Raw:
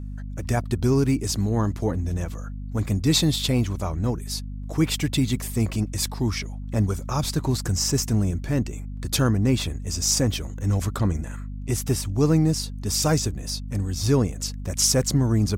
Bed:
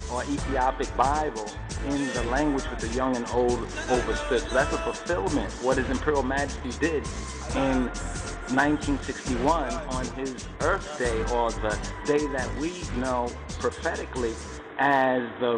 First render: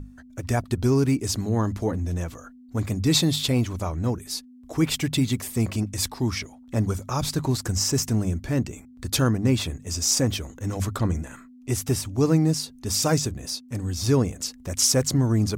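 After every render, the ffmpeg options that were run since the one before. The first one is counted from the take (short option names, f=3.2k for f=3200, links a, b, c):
-af "bandreject=f=50:t=h:w=6,bandreject=f=100:t=h:w=6,bandreject=f=150:t=h:w=6,bandreject=f=200:t=h:w=6"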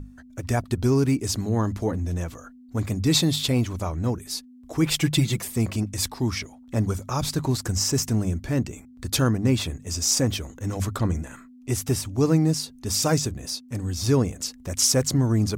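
-filter_complex "[0:a]asettb=1/sr,asplit=3[a][b][c];[a]atrim=end=4.854[d];[b]atrim=start=4.85:end=5.45,asetpts=PTS-STARTPTS,afade=t=in:d=0.004:c=qsin,afade=t=out:st=0.596:d=0.004:c=qsin,aecho=1:1:5.9:0.88,atrim=end_sample=26460[e];[c]atrim=start=5.446[f];[d][e]acrossfade=d=0.004:c1=hsin:c2=qsin[g];[g][f]acrossfade=d=0.004:c1=qsin:c2=hsin"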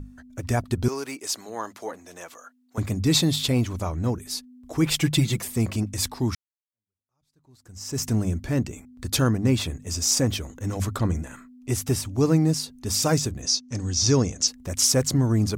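-filter_complex "[0:a]asettb=1/sr,asplit=3[a][b][c];[a]atrim=end=0.884[d];[b]atrim=start=0.88:end=2.78,asetpts=PTS-STARTPTS,afade=t=in:d=0.004:c=qsin,afade=t=out:st=1.896:d=0.004:c=qsin,highpass=620[e];[c]atrim=start=2.776[f];[d][e]acrossfade=d=0.004:c1=hsin:c2=qsin[g];[g][f]acrossfade=d=0.004:c1=qsin:c2=hsin,asettb=1/sr,asplit=3[h][i][j];[h]atrim=end=13.424[k];[i]atrim=start=13.42:end=14.48,asetpts=PTS-STARTPTS,afade=t=in:d=0.004:c=qsin,afade=t=out:st=1.056:d=0.004:c=qsin,lowpass=f=6k:t=q:w=3.9[l];[j]atrim=start=14.476[m];[k][l]acrossfade=d=0.004:c1=hsin:c2=qsin[n];[n][m]acrossfade=d=0.004:c1=qsin:c2=hsin,asplit=2[o][p];[o]atrim=end=6.35,asetpts=PTS-STARTPTS,afade=t=out:st=6.346:d=0.004:c=hsin[q];[p]atrim=start=6.35,asetpts=PTS-STARTPTS,afade=t=in:d=1.7:c=exp[r];[q][r]concat=n=2:v=0:a=1"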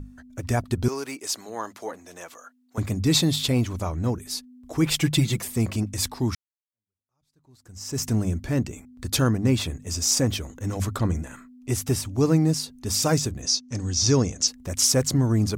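-af anull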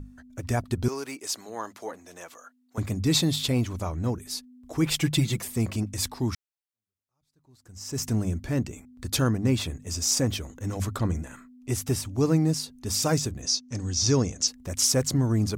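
-af "volume=-2.5dB"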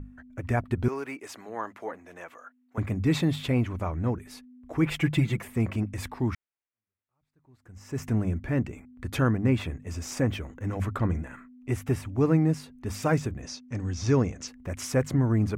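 -af "highshelf=f=3.2k:t=q:w=1.5:g=-12.5"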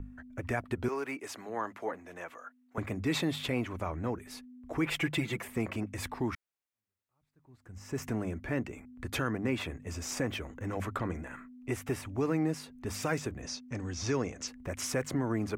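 -filter_complex "[0:a]acrossover=split=280|1600|4300[a][b][c][d];[a]acompressor=threshold=-39dB:ratio=4[e];[b]alimiter=level_in=0.5dB:limit=-24dB:level=0:latency=1,volume=-0.5dB[f];[e][f][c][d]amix=inputs=4:normalize=0"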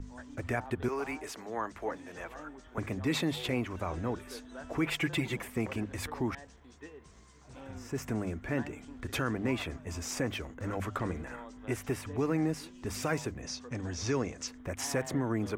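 -filter_complex "[1:a]volume=-23.5dB[a];[0:a][a]amix=inputs=2:normalize=0"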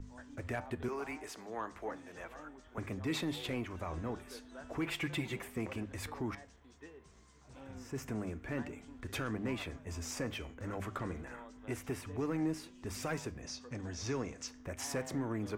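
-af "asoftclip=type=tanh:threshold=-21.5dB,flanger=delay=9.3:depth=6.4:regen=84:speed=0.32:shape=triangular"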